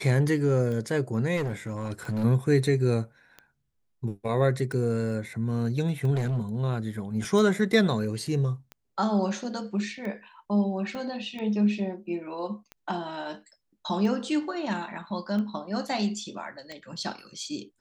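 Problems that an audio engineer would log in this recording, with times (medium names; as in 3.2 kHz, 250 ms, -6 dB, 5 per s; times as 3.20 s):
tick 45 rpm -25 dBFS
1.36–2.25 s: clipped -25 dBFS
6.14–6.58 s: clipped -23 dBFS
10.95 s: pop -25 dBFS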